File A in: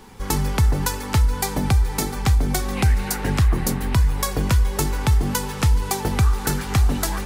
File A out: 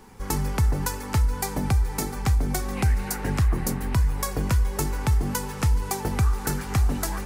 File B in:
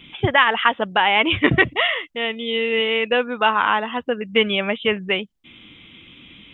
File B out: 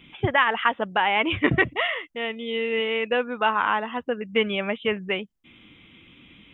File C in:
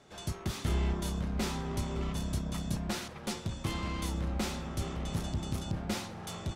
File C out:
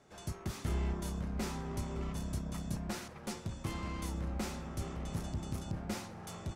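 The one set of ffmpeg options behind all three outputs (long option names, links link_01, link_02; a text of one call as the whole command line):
ffmpeg -i in.wav -af "equalizer=frequency=3500:width=1.8:gain=-5.5,volume=-4dB" out.wav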